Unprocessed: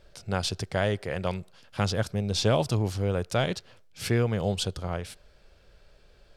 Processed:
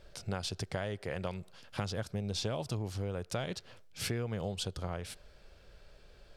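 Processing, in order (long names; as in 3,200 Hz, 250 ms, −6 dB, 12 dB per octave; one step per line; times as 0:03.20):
downward compressor 6 to 1, threshold −33 dBFS, peak gain reduction 13.5 dB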